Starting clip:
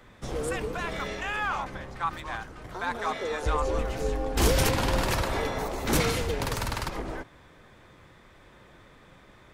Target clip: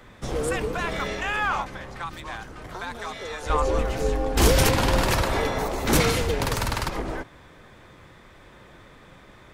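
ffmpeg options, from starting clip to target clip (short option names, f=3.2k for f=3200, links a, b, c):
-filter_complex "[0:a]asettb=1/sr,asplit=3[a][b][c];[a]atrim=end=1.624[d];[b]atrim=start=1.62:end=3.5,asetpts=PTS-STARTPTS,afade=t=in:d=0.004:c=qsin,afade=t=out:st=1.876:d=0.004:c=qsin,acrossover=split=150|630|2400[e][f][g][h];[e]acompressor=threshold=-45dB:ratio=4[i];[f]acompressor=threshold=-46dB:ratio=4[j];[g]acompressor=threshold=-41dB:ratio=4[k];[h]acompressor=threshold=-44dB:ratio=4[l];[i][j][k][l]amix=inputs=4:normalize=0[m];[c]atrim=start=3.496[n];[d][m]acrossfade=d=0.004:c1=hsin:c2=qsin[o];[o][n]acrossfade=d=0.004:c1=qsin:c2=hsin,volume=4.5dB"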